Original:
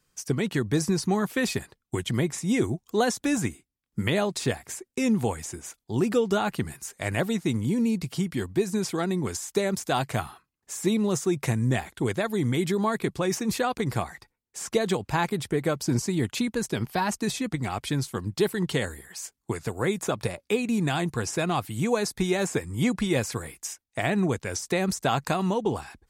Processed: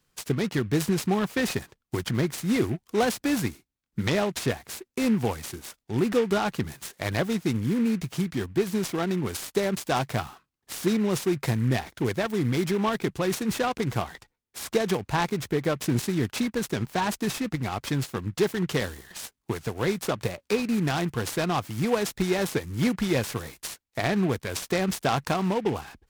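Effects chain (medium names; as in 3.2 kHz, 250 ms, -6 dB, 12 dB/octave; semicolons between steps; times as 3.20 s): delay time shaken by noise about 1.7 kHz, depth 0.042 ms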